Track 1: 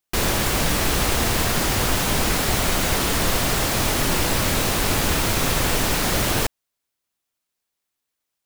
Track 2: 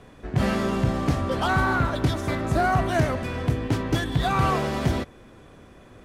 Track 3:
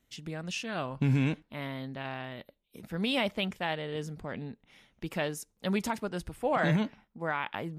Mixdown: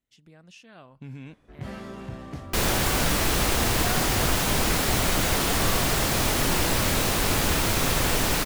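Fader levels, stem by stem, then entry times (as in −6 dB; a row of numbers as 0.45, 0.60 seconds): −2.5, −14.0, −14.0 decibels; 2.40, 1.25, 0.00 seconds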